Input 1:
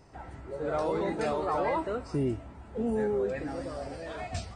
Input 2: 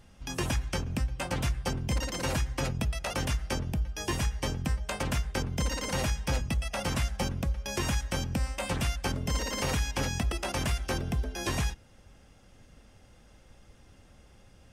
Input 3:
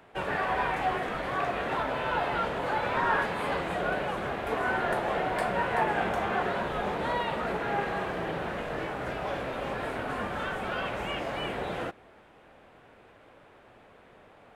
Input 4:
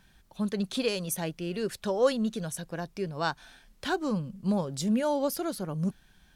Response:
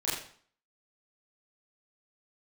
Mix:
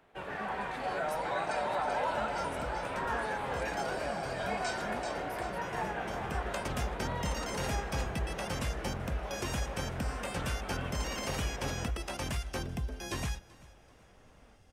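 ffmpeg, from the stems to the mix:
-filter_complex "[0:a]highpass=730,aecho=1:1:1.3:0.87,alimiter=level_in=1.58:limit=0.0631:level=0:latency=1,volume=0.631,adelay=300,volume=1.12,asplit=2[s0][s1];[s1]volume=0.531[s2];[1:a]adelay=1650,volume=0.531,asplit=2[s3][s4];[s4]volume=0.0794[s5];[2:a]volume=0.355,asplit=2[s6][s7];[s7]volume=0.282[s8];[3:a]volume=0.119,asplit=2[s9][s10];[s10]apad=whole_len=722207[s11];[s3][s11]sidechaincompress=threshold=0.001:ratio=4:attack=16:release=515[s12];[s2][s5][s8]amix=inputs=3:normalize=0,aecho=0:1:385|770|1155|1540|1925:1|0.39|0.152|0.0593|0.0231[s13];[s0][s12][s6][s9][s13]amix=inputs=5:normalize=0"

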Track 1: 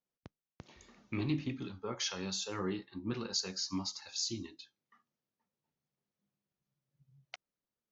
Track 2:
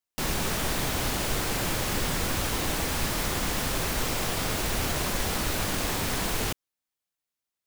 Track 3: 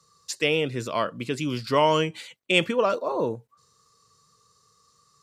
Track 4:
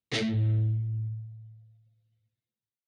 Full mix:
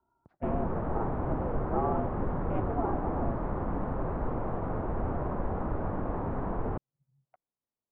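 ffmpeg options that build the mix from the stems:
-filter_complex "[0:a]volume=0.473[s0];[1:a]adelay=250,volume=0.891[s1];[2:a]aeval=exprs='val(0)*sin(2*PI*220*n/s)':c=same,volume=0.473[s2];[s0][s1][s2]amix=inputs=3:normalize=0,lowpass=f=1100:w=0.5412,lowpass=f=1100:w=1.3066"

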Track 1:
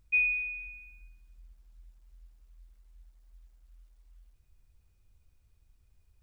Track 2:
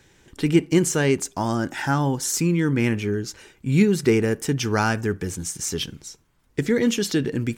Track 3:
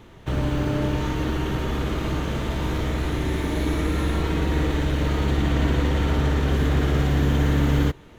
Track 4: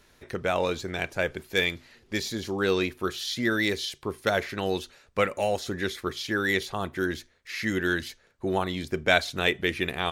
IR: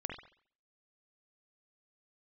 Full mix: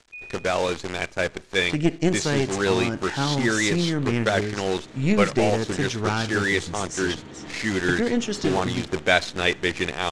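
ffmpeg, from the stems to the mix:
-filter_complex "[0:a]volume=0.2[s0];[1:a]aeval=exprs='(tanh(3.16*val(0)+0.75)-tanh(0.75))/3.16':c=same,adelay=1300,volume=0.891,asplit=2[s1][s2];[s2]volume=0.178[s3];[2:a]highpass=180,adelay=2000,volume=0.188,asplit=2[s4][s5];[s5]volume=0.355[s6];[3:a]acrusher=bits=6:dc=4:mix=0:aa=0.000001,volume=1.26,asplit=3[s7][s8][s9];[s8]volume=0.0631[s10];[s9]apad=whole_len=449074[s11];[s4][s11]sidechaincompress=threshold=0.0282:ratio=8:attack=8.6:release=390[s12];[4:a]atrim=start_sample=2205[s13];[s3][s6][s10]amix=inputs=3:normalize=0[s14];[s14][s13]afir=irnorm=-1:irlink=0[s15];[s0][s1][s12][s7][s15]amix=inputs=5:normalize=0,lowpass=f=8100:w=0.5412,lowpass=f=8100:w=1.3066"

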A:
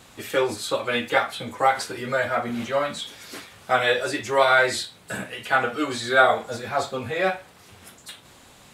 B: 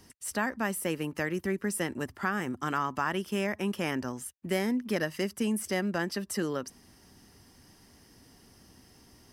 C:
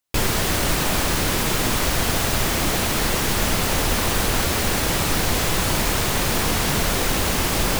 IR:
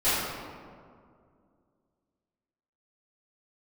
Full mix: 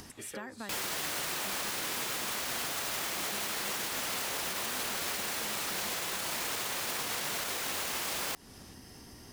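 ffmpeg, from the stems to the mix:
-filter_complex "[0:a]acompressor=threshold=0.0562:ratio=6,volume=0.355[s0];[1:a]acompressor=mode=upward:threshold=0.01:ratio=2.5,volume=0.841[s1];[2:a]highpass=f=840:p=1,alimiter=limit=0.141:level=0:latency=1,adelay=550,volume=1.19[s2];[s0][s1]amix=inputs=2:normalize=0,acompressor=threshold=0.00794:ratio=3,volume=1[s3];[s2][s3]amix=inputs=2:normalize=0,alimiter=level_in=1.19:limit=0.0631:level=0:latency=1:release=204,volume=0.841"

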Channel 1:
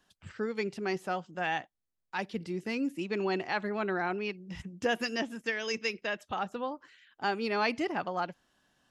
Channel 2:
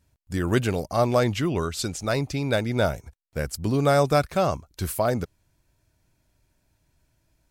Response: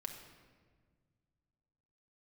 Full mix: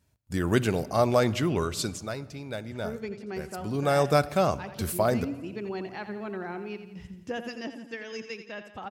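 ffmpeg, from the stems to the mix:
-filter_complex "[0:a]lowshelf=f=470:g=7.5,adelay=2450,volume=0.398,asplit=2[s0][s1];[s1]volume=0.316[s2];[1:a]highpass=70,volume=2.24,afade=t=out:st=1.81:d=0.35:silence=0.298538,afade=t=in:st=3.54:d=0.62:silence=0.298538,asplit=2[s3][s4];[s4]volume=0.447[s5];[2:a]atrim=start_sample=2205[s6];[s5][s6]afir=irnorm=-1:irlink=0[s7];[s2]aecho=0:1:86|172|258|344|430|516|602|688:1|0.52|0.27|0.141|0.0731|0.038|0.0198|0.0103[s8];[s0][s3][s7][s8]amix=inputs=4:normalize=0"

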